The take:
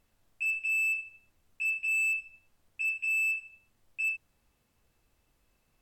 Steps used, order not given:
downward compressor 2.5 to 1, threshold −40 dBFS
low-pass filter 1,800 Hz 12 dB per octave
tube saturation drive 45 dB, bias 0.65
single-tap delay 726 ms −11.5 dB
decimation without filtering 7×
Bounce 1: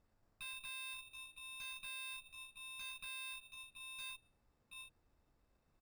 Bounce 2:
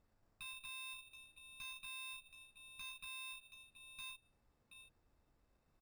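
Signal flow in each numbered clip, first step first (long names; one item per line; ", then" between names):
low-pass filter, then decimation without filtering, then single-tap delay, then downward compressor, then tube saturation
downward compressor, then low-pass filter, then decimation without filtering, then single-tap delay, then tube saturation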